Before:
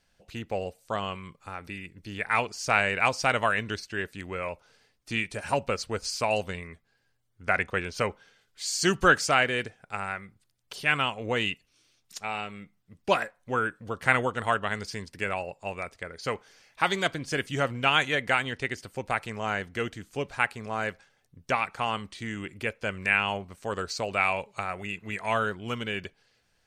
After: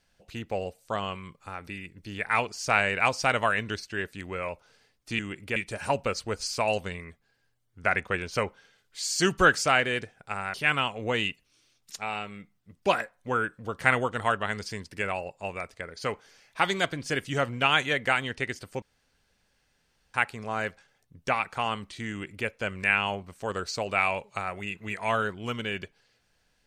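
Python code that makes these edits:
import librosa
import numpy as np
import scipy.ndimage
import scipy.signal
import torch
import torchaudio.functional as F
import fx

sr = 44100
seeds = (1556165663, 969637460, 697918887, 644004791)

y = fx.edit(x, sr, fx.cut(start_s=10.17, length_s=0.59),
    fx.room_tone_fill(start_s=19.04, length_s=1.32),
    fx.duplicate(start_s=22.32, length_s=0.37, to_s=5.19), tone=tone)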